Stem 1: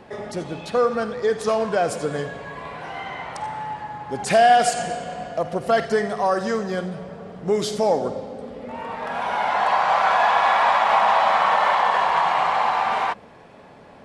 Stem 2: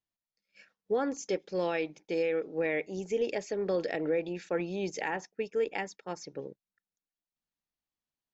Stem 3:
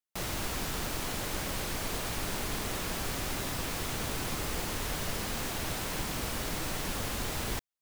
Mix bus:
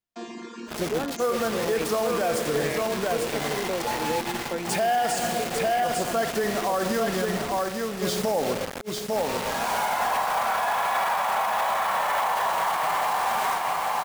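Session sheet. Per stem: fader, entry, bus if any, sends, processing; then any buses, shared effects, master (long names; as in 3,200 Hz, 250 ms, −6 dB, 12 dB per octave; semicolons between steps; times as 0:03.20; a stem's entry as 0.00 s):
−1.0 dB, 0.45 s, no send, echo send −5 dB, bit reduction 5 bits; level that may rise only so fast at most 520 dB per second
0.0 dB, 0.00 s, no send, no echo send, no processing
+2.0 dB, 0.00 s, no send, no echo send, channel vocoder with a chord as carrier bare fifth, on A#3; reverb reduction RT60 1.1 s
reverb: not used
echo: single-tap delay 849 ms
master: brickwall limiter −16.5 dBFS, peak gain reduction 10 dB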